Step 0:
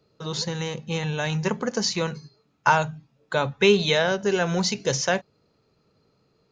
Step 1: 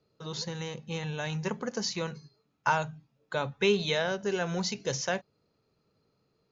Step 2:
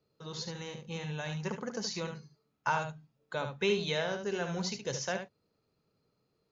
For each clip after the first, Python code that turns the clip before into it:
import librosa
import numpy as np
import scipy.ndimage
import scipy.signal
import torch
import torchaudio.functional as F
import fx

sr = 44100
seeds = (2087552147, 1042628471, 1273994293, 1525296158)

y1 = scipy.signal.sosfilt(scipy.signal.butter(16, 7400.0, 'lowpass', fs=sr, output='sos'), x)
y1 = y1 * 10.0 ** (-7.5 / 20.0)
y2 = y1 + 10.0 ** (-7.5 / 20.0) * np.pad(y1, (int(72 * sr / 1000.0), 0))[:len(y1)]
y2 = y2 * 10.0 ** (-4.5 / 20.0)